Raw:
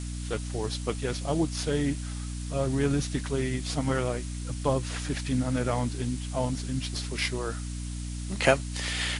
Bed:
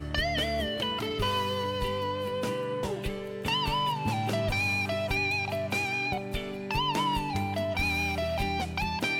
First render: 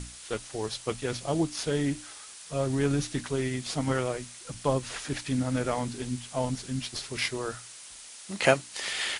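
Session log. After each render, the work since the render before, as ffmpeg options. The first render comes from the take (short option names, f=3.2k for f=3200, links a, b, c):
-af "bandreject=f=60:t=h:w=6,bandreject=f=120:t=h:w=6,bandreject=f=180:t=h:w=6,bandreject=f=240:t=h:w=6,bandreject=f=300:t=h:w=6"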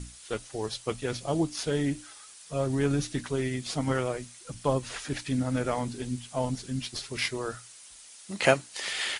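-af "afftdn=nr=6:nf=-47"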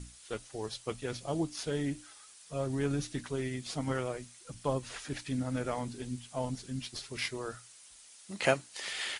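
-af "volume=-5.5dB"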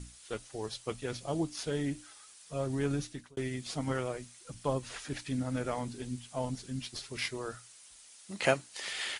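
-filter_complex "[0:a]asplit=2[a][b];[a]atrim=end=3.37,asetpts=PTS-STARTPTS,afade=t=out:st=2.95:d=0.42[c];[b]atrim=start=3.37,asetpts=PTS-STARTPTS,afade=t=in:d=0.004:c=hsin[d];[c][d]concat=n=2:v=0:a=1"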